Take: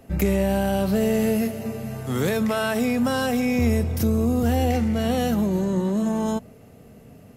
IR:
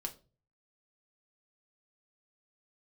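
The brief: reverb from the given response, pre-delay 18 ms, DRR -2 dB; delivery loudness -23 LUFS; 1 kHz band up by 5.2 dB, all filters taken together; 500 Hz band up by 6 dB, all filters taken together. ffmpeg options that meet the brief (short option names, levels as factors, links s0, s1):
-filter_complex "[0:a]equalizer=f=500:t=o:g=6,equalizer=f=1000:t=o:g=4.5,asplit=2[s0][s1];[1:a]atrim=start_sample=2205,adelay=18[s2];[s1][s2]afir=irnorm=-1:irlink=0,volume=1.41[s3];[s0][s3]amix=inputs=2:normalize=0,volume=0.398"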